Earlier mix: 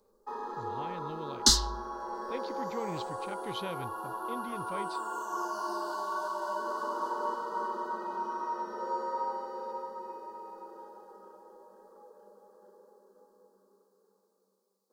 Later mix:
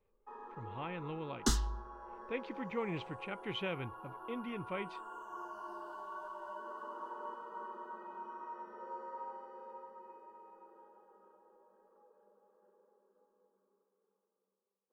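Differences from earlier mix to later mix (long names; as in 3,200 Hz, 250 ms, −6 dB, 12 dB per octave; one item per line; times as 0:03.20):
first sound −12.0 dB
second sound: add parametric band 2,500 Hz −9.5 dB 1.5 octaves
master: add high shelf with overshoot 3,400 Hz −8.5 dB, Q 3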